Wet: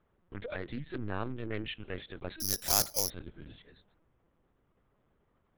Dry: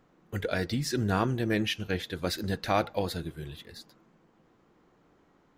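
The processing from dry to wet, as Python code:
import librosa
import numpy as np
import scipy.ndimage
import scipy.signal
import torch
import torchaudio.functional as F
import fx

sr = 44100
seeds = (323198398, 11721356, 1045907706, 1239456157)

y = fx.lpc_vocoder(x, sr, seeds[0], excitation='pitch_kept', order=10)
y = fx.resample_bad(y, sr, factor=8, down='none', up='zero_stuff', at=(2.4, 3.1))
y = fx.doppler_dist(y, sr, depth_ms=0.3)
y = y * 10.0 ** (-8.5 / 20.0)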